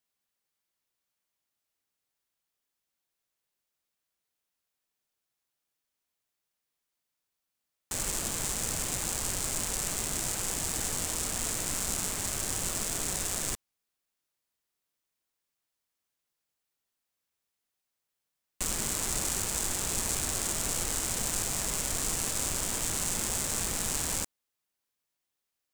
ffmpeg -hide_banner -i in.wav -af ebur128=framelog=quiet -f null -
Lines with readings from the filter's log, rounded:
Integrated loudness:
  I:         -29.9 LUFS
  Threshold: -39.9 LUFS
Loudness range:
  LRA:         8.2 LU
  Threshold: -51.2 LUFS
  LRA low:   -37.3 LUFS
  LRA high:  -29.1 LUFS